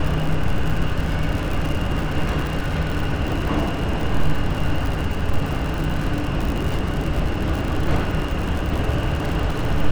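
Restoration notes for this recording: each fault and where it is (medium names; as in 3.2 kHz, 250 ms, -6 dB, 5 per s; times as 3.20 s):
crackle 92 per s -24 dBFS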